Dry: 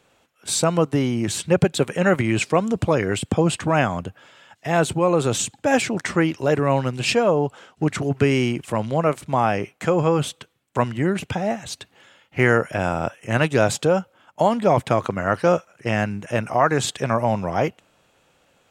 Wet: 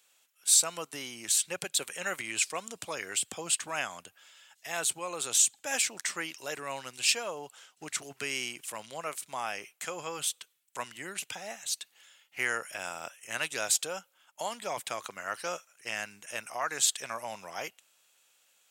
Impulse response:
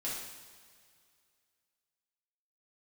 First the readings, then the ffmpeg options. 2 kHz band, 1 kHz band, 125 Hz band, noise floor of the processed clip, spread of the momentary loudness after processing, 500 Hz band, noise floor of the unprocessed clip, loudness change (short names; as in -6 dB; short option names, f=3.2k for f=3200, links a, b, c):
-9.0 dB, -15.0 dB, -31.5 dB, -70 dBFS, 13 LU, -20.0 dB, -63 dBFS, -10.0 dB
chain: -af "aderivative,volume=2.5dB"